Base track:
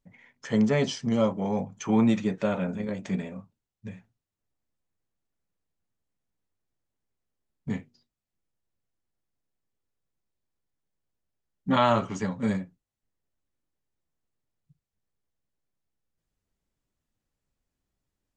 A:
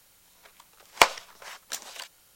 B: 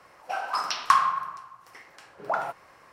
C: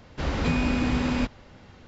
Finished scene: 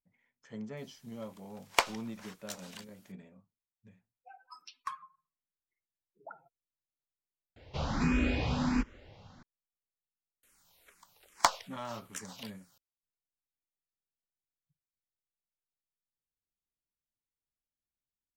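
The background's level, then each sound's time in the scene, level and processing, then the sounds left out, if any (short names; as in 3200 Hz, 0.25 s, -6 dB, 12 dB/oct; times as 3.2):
base track -19.5 dB
0.77 add A -9 dB
3.97 add B -17 dB + per-bin expansion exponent 3
7.56 replace with C -2.5 dB + endless phaser +1.4 Hz
10.43 add A -5 dB + endless phaser -2.4 Hz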